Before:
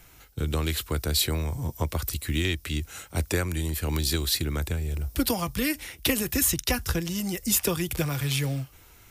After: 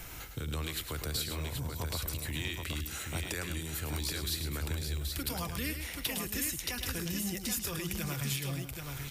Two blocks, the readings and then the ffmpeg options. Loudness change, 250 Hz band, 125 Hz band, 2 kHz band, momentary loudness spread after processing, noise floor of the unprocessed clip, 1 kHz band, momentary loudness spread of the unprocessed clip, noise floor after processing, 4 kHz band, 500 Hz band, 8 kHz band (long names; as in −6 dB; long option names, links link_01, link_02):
−8.0 dB, −10.0 dB, −8.0 dB, −6.0 dB, 4 LU, −53 dBFS, −7.5 dB, 7 LU, −44 dBFS, −7.0 dB, −10.5 dB, −7.5 dB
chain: -filter_complex "[0:a]acrossover=split=1200[link_01][link_02];[link_01]alimiter=level_in=2dB:limit=-24dB:level=0:latency=1,volume=-2dB[link_03];[link_03][link_02]amix=inputs=2:normalize=0,acompressor=threshold=-48dB:ratio=3,aecho=1:1:107|550|779:0.398|0.141|0.562,volume=8dB"